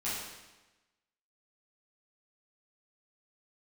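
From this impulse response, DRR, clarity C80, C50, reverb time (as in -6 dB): -11.0 dB, 2.5 dB, 0.0 dB, 1.1 s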